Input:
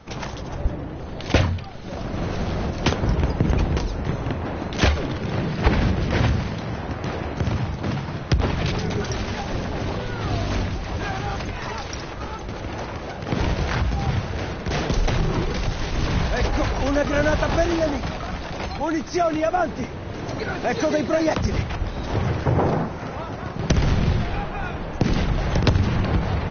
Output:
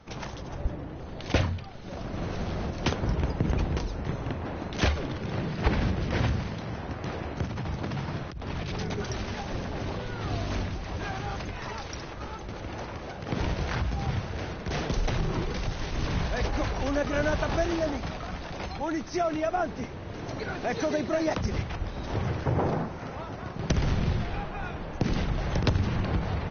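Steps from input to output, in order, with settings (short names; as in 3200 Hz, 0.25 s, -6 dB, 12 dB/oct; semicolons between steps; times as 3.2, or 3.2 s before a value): 7.43–8.98 negative-ratio compressor -26 dBFS, ratio -1; gain -6.5 dB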